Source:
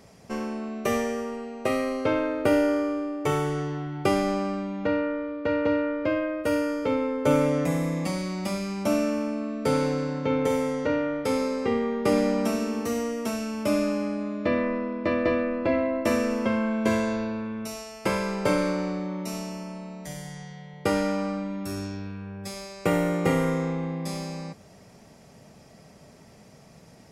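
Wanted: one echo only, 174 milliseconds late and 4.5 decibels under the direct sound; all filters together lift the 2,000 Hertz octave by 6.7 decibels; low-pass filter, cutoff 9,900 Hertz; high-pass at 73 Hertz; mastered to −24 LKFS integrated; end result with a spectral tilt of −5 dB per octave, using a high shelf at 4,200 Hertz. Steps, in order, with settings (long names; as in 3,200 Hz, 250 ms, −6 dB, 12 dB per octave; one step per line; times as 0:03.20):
high-pass filter 73 Hz
low-pass filter 9,900 Hz
parametric band 2,000 Hz +7 dB
high-shelf EQ 4,200 Hz +5.5 dB
single-tap delay 174 ms −4.5 dB
level +0.5 dB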